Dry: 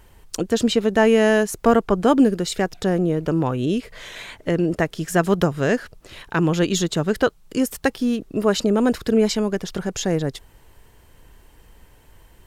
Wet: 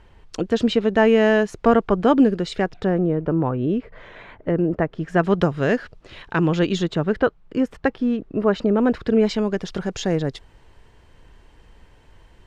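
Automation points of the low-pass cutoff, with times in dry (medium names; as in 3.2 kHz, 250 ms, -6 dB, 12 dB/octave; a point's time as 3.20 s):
2.53 s 3.7 kHz
3.24 s 1.5 kHz
4.93 s 1.5 kHz
5.43 s 4.1 kHz
6.57 s 4.1 kHz
7.22 s 2.1 kHz
8.70 s 2.1 kHz
9.64 s 5.1 kHz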